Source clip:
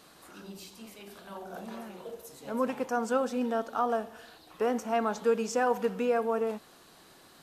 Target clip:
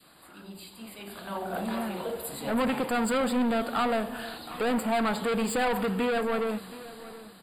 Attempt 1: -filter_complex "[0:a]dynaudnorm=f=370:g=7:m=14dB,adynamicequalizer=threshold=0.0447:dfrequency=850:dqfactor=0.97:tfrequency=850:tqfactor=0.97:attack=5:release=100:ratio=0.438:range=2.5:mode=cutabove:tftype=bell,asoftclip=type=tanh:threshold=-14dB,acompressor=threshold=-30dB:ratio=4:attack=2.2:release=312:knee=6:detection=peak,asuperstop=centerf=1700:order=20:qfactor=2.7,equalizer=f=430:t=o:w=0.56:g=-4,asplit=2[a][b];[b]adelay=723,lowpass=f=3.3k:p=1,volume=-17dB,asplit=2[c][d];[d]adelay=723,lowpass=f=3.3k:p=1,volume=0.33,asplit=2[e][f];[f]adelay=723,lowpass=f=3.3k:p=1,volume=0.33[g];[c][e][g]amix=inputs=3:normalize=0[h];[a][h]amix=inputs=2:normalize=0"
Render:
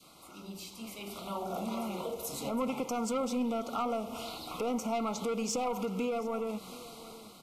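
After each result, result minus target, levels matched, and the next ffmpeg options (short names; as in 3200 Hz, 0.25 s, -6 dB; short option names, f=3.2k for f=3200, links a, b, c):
compressor: peak gain reduction +12 dB; 2000 Hz band -7.5 dB; soft clip: distortion -7 dB
-filter_complex "[0:a]dynaudnorm=f=370:g=7:m=14dB,adynamicequalizer=threshold=0.0447:dfrequency=850:dqfactor=0.97:tfrequency=850:tqfactor=0.97:attack=5:release=100:ratio=0.438:range=2.5:mode=cutabove:tftype=bell,asoftclip=type=tanh:threshold=-14dB,asuperstop=centerf=1700:order=20:qfactor=2.7,equalizer=f=430:t=o:w=0.56:g=-4,asplit=2[a][b];[b]adelay=723,lowpass=f=3.3k:p=1,volume=-17dB,asplit=2[c][d];[d]adelay=723,lowpass=f=3.3k:p=1,volume=0.33,asplit=2[e][f];[f]adelay=723,lowpass=f=3.3k:p=1,volume=0.33[g];[c][e][g]amix=inputs=3:normalize=0[h];[a][h]amix=inputs=2:normalize=0"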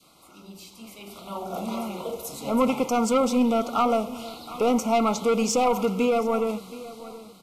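2000 Hz band -8.5 dB; soft clip: distortion -7 dB
-filter_complex "[0:a]dynaudnorm=f=370:g=7:m=14dB,adynamicequalizer=threshold=0.0447:dfrequency=850:dqfactor=0.97:tfrequency=850:tqfactor=0.97:attack=5:release=100:ratio=0.438:range=2.5:mode=cutabove:tftype=bell,asoftclip=type=tanh:threshold=-14dB,asuperstop=centerf=6000:order=20:qfactor=2.7,equalizer=f=430:t=o:w=0.56:g=-4,asplit=2[a][b];[b]adelay=723,lowpass=f=3.3k:p=1,volume=-17dB,asplit=2[c][d];[d]adelay=723,lowpass=f=3.3k:p=1,volume=0.33,asplit=2[e][f];[f]adelay=723,lowpass=f=3.3k:p=1,volume=0.33[g];[c][e][g]amix=inputs=3:normalize=0[h];[a][h]amix=inputs=2:normalize=0"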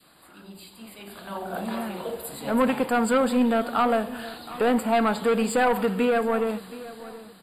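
soft clip: distortion -7 dB
-filter_complex "[0:a]dynaudnorm=f=370:g=7:m=14dB,adynamicequalizer=threshold=0.0447:dfrequency=850:dqfactor=0.97:tfrequency=850:tqfactor=0.97:attack=5:release=100:ratio=0.438:range=2.5:mode=cutabove:tftype=bell,asoftclip=type=tanh:threshold=-22.5dB,asuperstop=centerf=6000:order=20:qfactor=2.7,equalizer=f=430:t=o:w=0.56:g=-4,asplit=2[a][b];[b]adelay=723,lowpass=f=3.3k:p=1,volume=-17dB,asplit=2[c][d];[d]adelay=723,lowpass=f=3.3k:p=1,volume=0.33,asplit=2[e][f];[f]adelay=723,lowpass=f=3.3k:p=1,volume=0.33[g];[c][e][g]amix=inputs=3:normalize=0[h];[a][h]amix=inputs=2:normalize=0"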